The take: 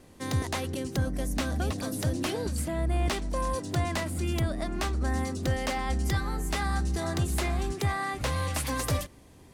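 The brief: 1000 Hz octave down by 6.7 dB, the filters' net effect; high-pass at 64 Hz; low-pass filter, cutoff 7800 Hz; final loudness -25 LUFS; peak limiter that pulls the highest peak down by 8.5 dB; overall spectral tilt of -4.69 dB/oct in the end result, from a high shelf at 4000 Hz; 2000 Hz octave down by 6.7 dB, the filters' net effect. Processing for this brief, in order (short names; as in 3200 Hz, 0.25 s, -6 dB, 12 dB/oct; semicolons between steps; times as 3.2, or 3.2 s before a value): HPF 64 Hz; LPF 7800 Hz; bell 1000 Hz -8 dB; bell 2000 Hz -7.5 dB; high shelf 4000 Hz +7.5 dB; gain +9.5 dB; limiter -15 dBFS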